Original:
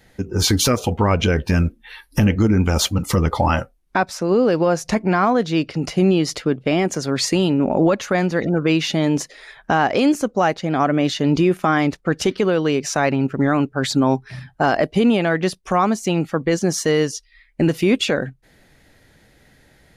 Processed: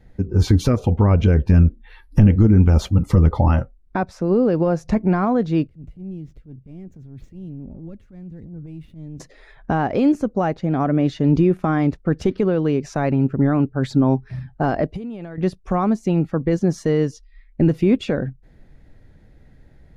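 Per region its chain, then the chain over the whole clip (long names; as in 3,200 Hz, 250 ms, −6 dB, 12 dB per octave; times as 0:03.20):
0:05.67–0:09.20: running median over 9 samples + guitar amp tone stack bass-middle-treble 10-0-1 + transient designer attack −11 dB, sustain +4 dB
0:14.88–0:15.38: high-shelf EQ 4,600 Hz +7 dB + downward compressor 20 to 1, threshold −27 dBFS
whole clip: spectral tilt −3.5 dB per octave; notch filter 3,000 Hz, Q 28; level −6 dB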